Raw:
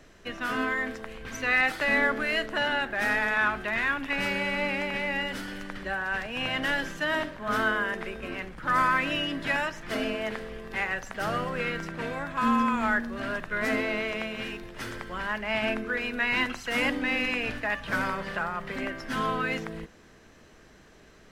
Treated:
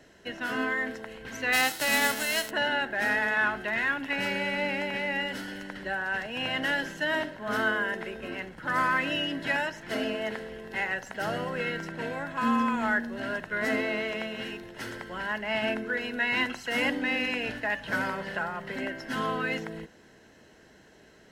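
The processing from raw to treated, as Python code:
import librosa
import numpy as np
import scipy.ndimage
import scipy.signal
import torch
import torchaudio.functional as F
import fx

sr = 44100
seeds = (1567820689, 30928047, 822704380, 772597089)

y = fx.envelope_flatten(x, sr, power=0.3, at=(1.52, 2.49), fade=0.02)
y = fx.notch_comb(y, sr, f0_hz=1200.0)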